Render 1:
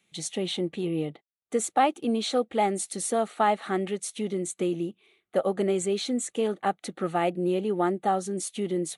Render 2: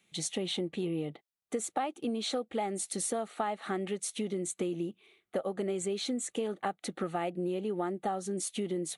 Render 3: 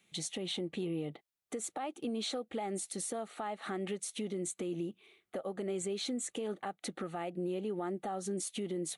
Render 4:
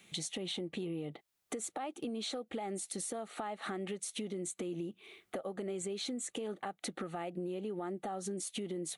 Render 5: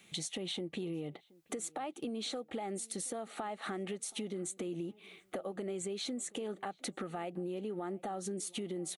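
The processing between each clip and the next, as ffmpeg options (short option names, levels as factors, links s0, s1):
-af "acompressor=threshold=0.0316:ratio=6"
-af "alimiter=level_in=1.68:limit=0.0631:level=0:latency=1:release=178,volume=0.596"
-af "acompressor=threshold=0.00316:ratio=3,volume=2.99"
-filter_complex "[0:a]asplit=2[s0][s1];[s1]adelay=725,lowpass=f=1700:p=1,volume=0.0668,asplit=2[s2][s3];[s3]adelay=725,lowpass=f=1700:p=1,volume=0.36[s4];[s0][s2][s4]amix=inputs=3:normalize=0"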